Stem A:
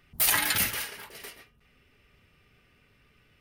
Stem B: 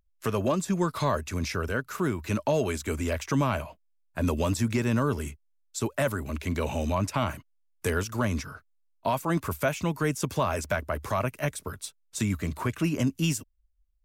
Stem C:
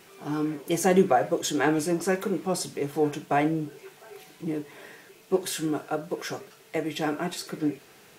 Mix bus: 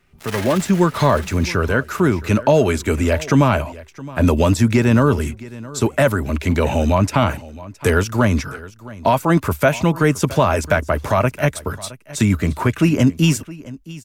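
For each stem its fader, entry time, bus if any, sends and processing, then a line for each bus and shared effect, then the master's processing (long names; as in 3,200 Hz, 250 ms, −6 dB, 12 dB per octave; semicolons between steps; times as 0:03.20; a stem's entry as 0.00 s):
+2.0 dB, 0.00 s, no send, echo send −7.5 dB, gap after every zero crossing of 0.084 ms
+1.5 dB, 0.00 s, no send, echo send −19 dB, notch filter 1,100 Hz, Q 17; automatic gain control gain up to 10.5 dB
−16.5 dB, 0.00 s, no send, no echo send, downward compressor, threshold −33 dBFS, peak gain reduction 17.5 dB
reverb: not used
echo: single-tap delay 667 ms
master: high-shelf EQ 4,200 Hz −6 dB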